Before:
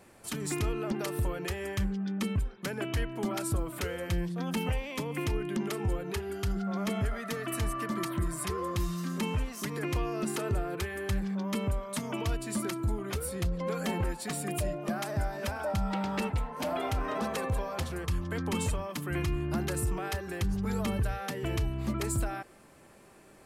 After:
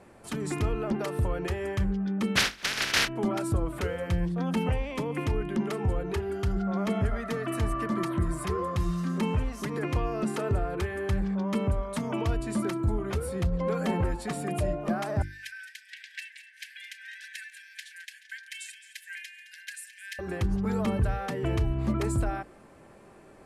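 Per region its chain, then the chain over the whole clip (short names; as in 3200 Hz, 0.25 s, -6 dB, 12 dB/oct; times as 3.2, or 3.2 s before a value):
2.35–3.07 spectral contrast lowered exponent 0.1 + band shelf 2900 Hz +11.5 dB 2.4 oct
15.22–20.19 brick-wall FIR high-pass 1500 Hz + split-band echo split 1800 Hz, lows 0.161 s, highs 0.215 s, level -13.5 dB
whole clip: LPF 12000 Hz 24 dB/oct; high shelf 2300 Hz -10.5 dB; notches 50/100/150/200/250/300/350 Hz; gain +5 dB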